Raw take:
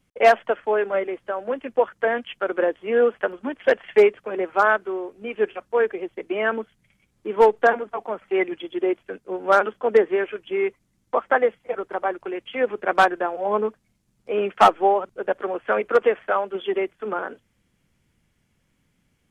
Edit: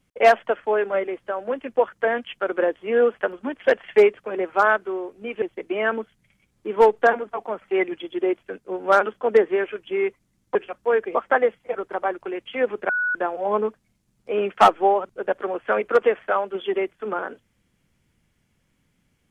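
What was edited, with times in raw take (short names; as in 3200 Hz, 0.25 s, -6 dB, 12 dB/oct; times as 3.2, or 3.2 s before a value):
5.42–6.02 move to 11.15
12.89–13.15 bleep 1470 Hz -20 dBFS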